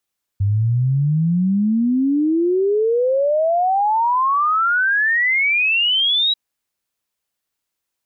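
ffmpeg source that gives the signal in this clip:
-f lavfi -i "aevalsrc='0.2*clip(min(t,5.94-t)/0.01,0,1)*sin(2*PI*97*5.94/log(3900/97)*(exp(log(3900/97)*t/5.94)-1))':d=5.94:s=44100"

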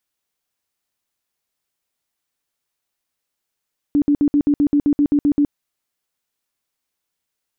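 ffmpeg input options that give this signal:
-f lavfi -i "aevalsrc='0.266*sin(2*PI*290*mod(t,0.13))*lt(mod(t,0.13),20/290)':d=1.56:s=44100"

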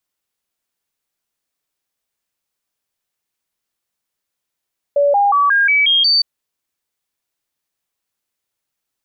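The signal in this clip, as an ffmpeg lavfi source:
-f lavfi -i "aevalsrc='0.316*clip(min(mod(t,0.18),0.18-mod(t,0.18))/0.005,0,1)*sin(2*PI*572*pow(2,floor(t/0.18)/2)*mod(t,0.18))':d=1.26:s=44100"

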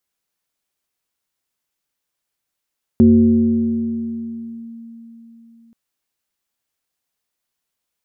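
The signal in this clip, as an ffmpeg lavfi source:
-f lavfi -i "aevalsrc='0.531*pow(10,-3*t/3.94)*sin(2*PI*230*t+0.62*clip(1-t/1.76,0,1)*sin(2*PI*0.61*230*t))':d=2.73:s=44100"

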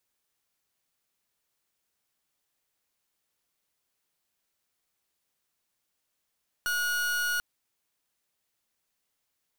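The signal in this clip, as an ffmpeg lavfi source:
-f lavfi -i "aevalsrc='0.0376*(2*lt(mod(1450*t,1),0.41)-1)':d=0.74:s=44100"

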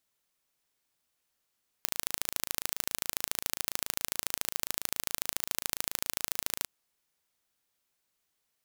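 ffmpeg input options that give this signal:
-f lavfi -i "aevalsrc='0.841*eq(mod(n,1615),0)*(0.5+0.5*eq(mod(n,3230),0))':d=4.81:s=44100"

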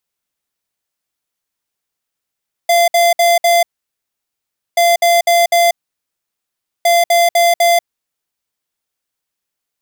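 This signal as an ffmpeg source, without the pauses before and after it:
-f lavfi -i "aevalsrc='0.299*(2*lt(mod(688*t,1),0.5)-1)*clip(min(mod(mod(t,2.08),0.25),0.19-mod(mod(t,2.08),0.25))/0.005,0,1)*lt(mod(t,2.08),1)':d=6.24:s=44100"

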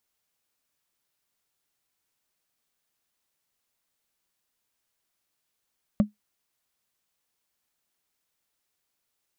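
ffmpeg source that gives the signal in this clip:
-f lavfi -i "aevalsrc='0.251*pow(10,-3*t/0.14)*sin(2*PI*209*t)+0.0891*pow(10,-3*t/0.041)*sin(2*PI*576.2*t)+0.0316*pow(10,-3*t/0.018)*sin(2*PI*1129.4*t)+0.0112*pow(10,-3*t/0.01)*sin(2*PI*1867*t)+0.00398*pow(10,-3*t/0.006)*sin(2*PI*2788.1*t)':d=0.45:s=44100"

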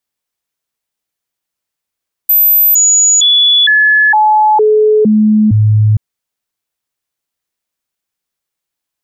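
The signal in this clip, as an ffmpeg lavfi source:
-f lavfi -i "aevalsrc='0.562*clip(min(mod(t,0.46),0.46-mod(t,0.46))/0.005,0,1)*sin(2*PI*13700*pow(2,-floor(t/0.46)/1)*mod(t,0.46))':d=3.68:s=44100"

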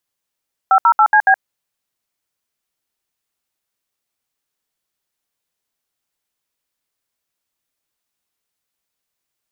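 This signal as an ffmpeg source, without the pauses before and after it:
-f lavfi -i "aevalsrc='0.316*clip(min(mod(t,0.14),0.072-mod(t,0.14))/0.002,0,1)*(eq(floor(t/0.14),0)*(sin(2*PI*770*mod(t,0.14))+sin(2*PI*1336*mod(t,0.14)))+eq(floor(t/0.14),1)*(sin(2*PI*941*mod(t,0.14))+sin(2*PI*1336*mod(t,0.14)))+eq(floor(t/0.14),2)*(sin(2*PI*852*mod(t,0.14))+sin(2*PI*1336*mod(t,0.14)))+eq(floor(t/0.14),3)*(sin(2*PI*852*mod(t,0.14))+sin(2*PI*1633*mod(t,0.14)))+eq(floor(t/0.14),4)*(sin(2*PI*770*mod(t,0.14))+sin(2*PI*1633*mod(t,0.14))))':d=0.7:s=44100"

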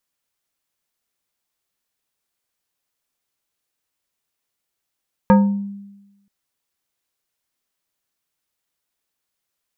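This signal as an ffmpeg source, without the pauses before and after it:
-f lavfi -i "aevalsrc='0.501*pow(10,-3*t/1.06)*sin(2*PI*200*t+1.1*pow(10,-3*t/0.54)*sin(2*PI*3.6*200*t))':d=0.98:s=44100"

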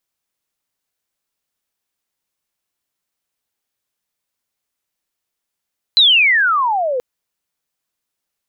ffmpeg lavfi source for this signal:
-f lavfi -i "aevalsrc='pow(10,(-6.5-10*t/1.03)/20)*sin(2*PI*4100*1.03/log(480/4100)*(exp(log(480/4100)*t/1.03)-1))':d=1.03:s=44100"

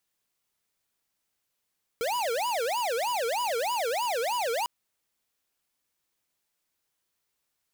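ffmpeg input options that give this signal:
-f lavfi -i "aevalsrc='0.0376*(2*lt(mod((720.5*t-268.5/(2*PI*3.2)*sin(2*PI*3.2*t)),1),0.5)-1)':d=2.65:s=44100"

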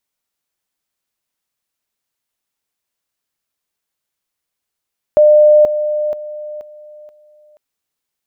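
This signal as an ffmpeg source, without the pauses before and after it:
-f lavfi -i "aevalsrc='pow(10,(-4.5-10*floor(t/0.48))/20)*sin(2*PI*602*t)':d=2.4:s=44100"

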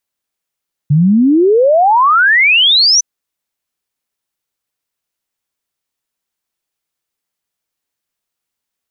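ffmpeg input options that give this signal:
-f lavfi -i "aevalsrc='0.501*clip(min(t,2.11-t)/0.01,0,1)*sin(2*PI*140*2.11/log(6100/140)*(exp(log(6100/140)*t/2.11)-1))':d=2.11:s=44100"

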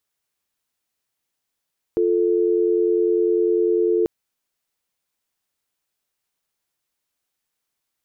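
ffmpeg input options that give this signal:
-f lavfi -i "aevalsrc='0.119*(sin(2*PI*350*t)+sin(2*PI*440*t))':d=2.09:s=44100"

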